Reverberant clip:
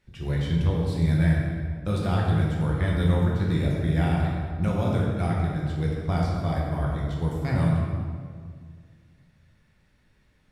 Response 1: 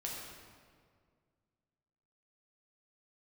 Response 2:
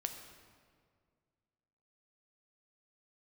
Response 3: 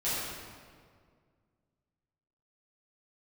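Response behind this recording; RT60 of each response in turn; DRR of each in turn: 1; 2.0, 2.0, 2.0 s; -3.5, 5.0, -13.0 dB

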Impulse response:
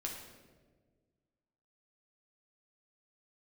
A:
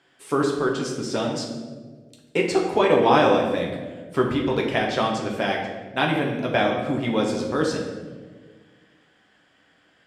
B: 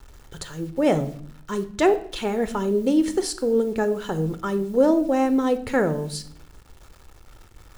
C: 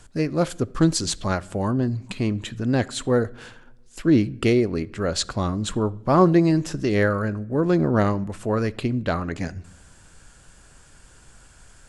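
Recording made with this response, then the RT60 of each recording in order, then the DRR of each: A; 1.5 s, 0.60 s, not exponential; -1.0, 11.0, 19.0 dB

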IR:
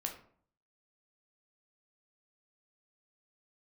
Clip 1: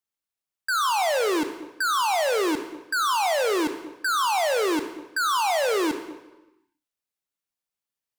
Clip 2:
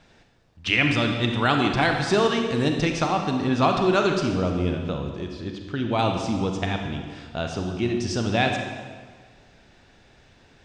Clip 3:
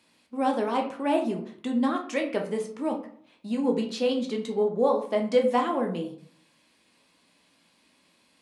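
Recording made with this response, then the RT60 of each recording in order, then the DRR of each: 3; 1.1, 1.6, 0.55 s; 8.0, 3.0, 2.0 dB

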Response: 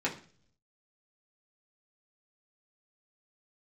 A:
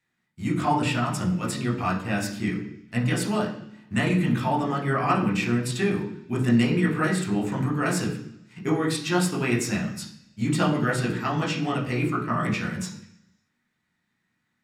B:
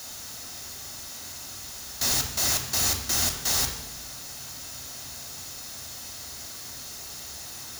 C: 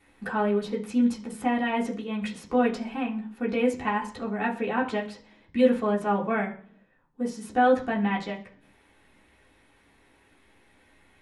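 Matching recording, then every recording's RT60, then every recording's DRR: C; 0.70, 1.0, 0.45 s; -3.0, 4.0, -5.0 dB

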